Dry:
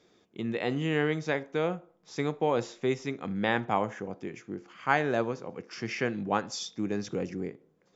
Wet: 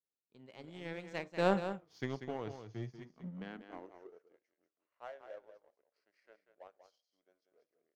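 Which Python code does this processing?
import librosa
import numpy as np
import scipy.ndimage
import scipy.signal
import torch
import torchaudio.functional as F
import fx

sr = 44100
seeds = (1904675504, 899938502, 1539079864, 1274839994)

p1 = fx.doppler_pass(x, sr, speed_mps=38, closest_m=3.0, pass_at_s=1.63)
p2 = p1 + fx.echo_single(p1, sr, ms=190, db=-7.0, dry=0)
p3 = fx.filter_sweep_highpass(p2, sr, from_hz=70.0, to_hz=570.0, start_s=2.25, end_s=4.47, q=6.3)
p4 = fx.power_curve(p3, sr, exponent=1.4)
y = p4 * librosa.db_to_amplitude(9.5)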